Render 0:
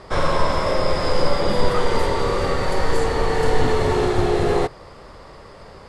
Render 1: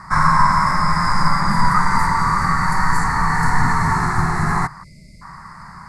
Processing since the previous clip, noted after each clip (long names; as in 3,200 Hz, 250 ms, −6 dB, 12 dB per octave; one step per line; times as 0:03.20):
time-frequency box erased 0:04.83–0:05.22, 660–2,000 Hz
drawn EQ curve 100 Hz 0 dB, 170 Hz +11 dB, 500 Hz −24 dB, 980 Hz +11 dB, 2,000 Hz +8 dB, 3,100 Hz −25 dB, 4,400 Hz 0 dB, 8,500 Hz +6 dB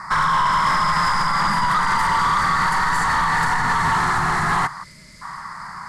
brickwall limiter −9.5 dBFS, peak gain reduction 7.5 dB
mid-hump overdrive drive 13 dB, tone 7,800 Hz, clips at −9.5 dBFS
delay with a high-pass on its return 743 ms, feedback 64%, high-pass 4,300 Hz, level −18 dB
level −2 dB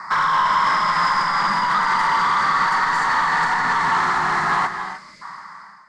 fade-out on the ending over 0.73 s
three-way crossover with the lows and the highs turned down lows −17 dB, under 200 Hz, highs −22 dB, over 7,100 Hz
reverb whose tail is shaped and stops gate 330 ms rising, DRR 8.5 dB